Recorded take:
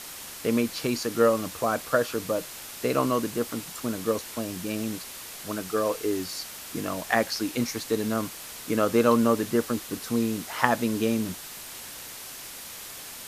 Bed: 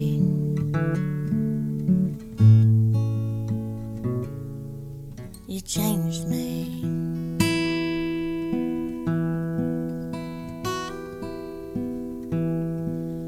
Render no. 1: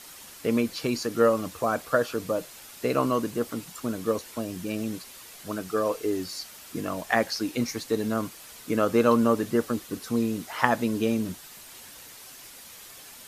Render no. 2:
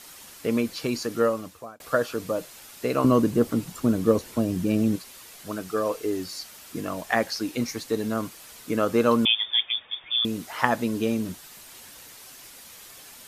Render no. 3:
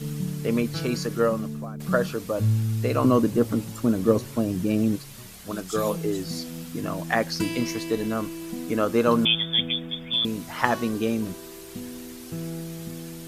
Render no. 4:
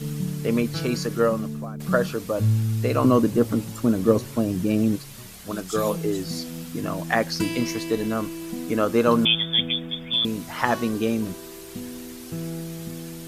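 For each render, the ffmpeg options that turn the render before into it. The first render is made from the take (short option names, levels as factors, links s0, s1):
-af "afftdn=nr=7:nf=-41"
-filter_complex "[0:a]asettb=1/sr,asplit=3[s0][s1][s2];[s0]atrim=end=3.044[s3];[s1]atrim=start=3.04:end=4.96,asetpts=PTS-STARTPTS,afade=t=in:d=0.004:c=qsin,afade=t=out:st=1.916:d=0.004:c=qsin,lowshelf=f=480:g=11[s4];[s2]atrim=start=4.956[s5];[s3][s4]acrossfade=d=0.004:c1=hsin:c2=qsin[s6];[s6][s5]acrossfade=d=0.004:c1=qsin:c2=hsin,asettb=1/sr,asplit=3[s7][s8][s9];[s7]atrim=end=9.254[s10];[s8]atrim=start=9.25:end=10.25,asetpts=PTS-STARTPTS,afade=t=in:d=0.004:c=qsin,afade=t=out:st=0.996:d=0.004:c=qsin,lowpass=f=3100:t=q:w=0.5098,lowpass=f=3100:t=q:w=0.6013,lowpass=f=3100:t=q:w=0.9,lowpass=f=3100:t=q:w=2.563,afreqshift=-3700[s11];[s9]atrim=start=10.246[s12];[s10][s11]acrossfade=d=0.004:c1=hsin:c2=qsin[s13];[s13][s12]acrossfade=d=0.004:c1=qsin:c2=hsin,asplit=2[s14][s15];[s14]atrim=end=1.8,asetpts=PTS-STARTPTS,afade=t=out:st=1.12:d=0.68[s16];[s15]atrim=start=1.8,asetpts=PTS-STARTPTS,afade=t=in:d=0.004:c=hsin[s17];[s16][s17]concat=n=2:v=0:a=1"
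-filter_complex "[1:a]volume=0.398[s0];[0:a][s0]amix=inputs=2:normalize=0"
-af "volume=1.19,alimiter=limit=0.708:level=0:latency=1"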